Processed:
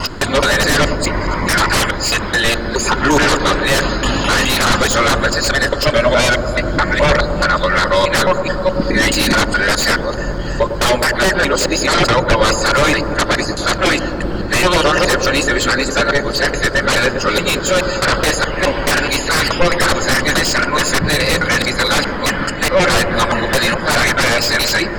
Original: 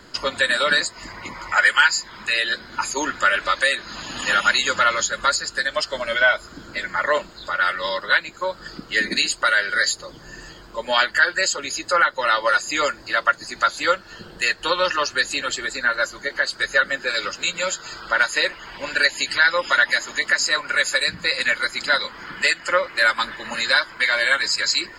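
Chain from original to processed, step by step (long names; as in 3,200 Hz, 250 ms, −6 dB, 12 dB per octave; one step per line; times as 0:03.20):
reversed piece by piece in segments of 212 ms
sine wavefolder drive 16 dB, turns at −3.5 dBFS
spectral tilt −2 dB per octave
on a send: delay with a low-pass on its return 102 ms, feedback 84%, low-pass 760 Hz, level −7 dB
on the sum: level −5.5 dB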